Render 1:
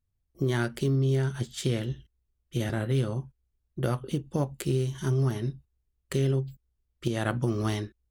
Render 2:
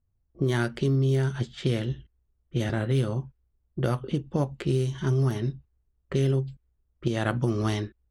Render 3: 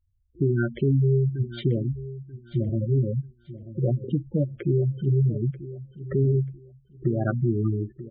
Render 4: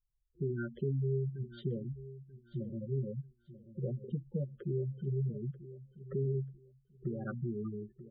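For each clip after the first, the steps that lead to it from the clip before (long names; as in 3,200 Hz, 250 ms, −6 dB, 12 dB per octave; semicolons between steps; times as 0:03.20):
low-pass that shuts in the quiet parts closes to 1,100 Hz, open at −21.5 dBFS; in parallel at −2.5 dB: downward compressor, threshold −34 dBFS, peak gain reduction 12 dB
gate on every frequency bin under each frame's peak −10 dB strong; repeating echo 937 ms, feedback 25%, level −15 dB; level +3 dB
phaser with its sweep stopped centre 450 Hz, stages 8; level −9 dB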